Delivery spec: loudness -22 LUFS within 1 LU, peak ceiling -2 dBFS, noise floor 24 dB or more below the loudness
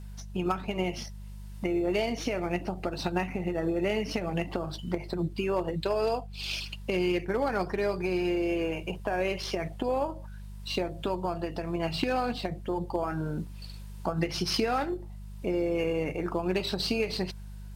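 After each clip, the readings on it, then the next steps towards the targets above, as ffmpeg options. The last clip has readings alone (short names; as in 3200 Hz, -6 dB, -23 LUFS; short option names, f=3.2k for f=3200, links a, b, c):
hum 50 Hz; harmonics up to 200 Hz; hum level -39 dBFS; loudness -31.0 LUFS; peak -15.5 dBFS; loudness target -22.0 LUFS
-> -af "bandreject=f=50:t=h:w=4,bandreject=f=100:t=h:w=4,bandreject=f=150:t=h:w=4,bandreject=f=200:t=h:w=4"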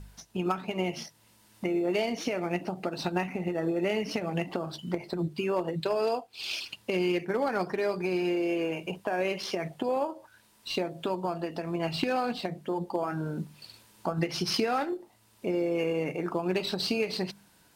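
hum none; loudness -31.0 LUFS; peak -15.5 dBFS; loudness target -22.0 LUFS
-> -af "volume=9dB"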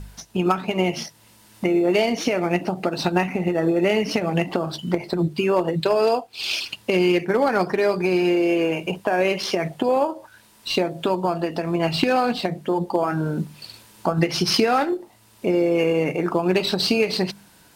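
loudness -22.0 LUFS; peak -6.5 dBFS; noise floor -53 dBFS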